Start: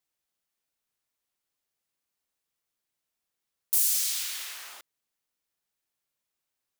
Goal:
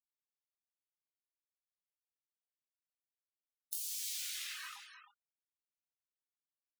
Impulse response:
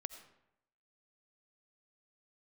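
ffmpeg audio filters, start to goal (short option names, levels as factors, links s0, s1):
-filter_complex "[0:a]afftfilt=real='re*gte(hypot(re,im),0.0126)':imag='im*gte(hypot(re,im),0.0126)':win_size=1024:overlap=0.75,acrossover=split=5200[s0][s1];[s1]acompressor=threshold=0.0398:ratio=4:attack=1:release=60[s2];[s0][s2]amix=inputs=2:normalize=0,equalizer=f=250:w=6.1:g=-3,acompressor=threshold=0.00501:ratio=5,flanger=delay=20:depth=2.6:speed=1,aecho=1:1:311:0.335,volume=2.82"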